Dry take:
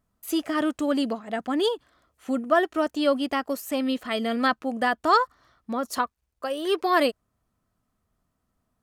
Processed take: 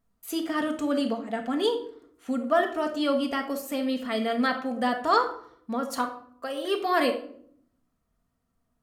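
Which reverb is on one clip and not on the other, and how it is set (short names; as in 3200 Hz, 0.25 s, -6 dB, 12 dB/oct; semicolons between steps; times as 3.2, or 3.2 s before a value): shoebox room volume 970 m³, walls furnished, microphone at 1.7 m; gain -3.5 dB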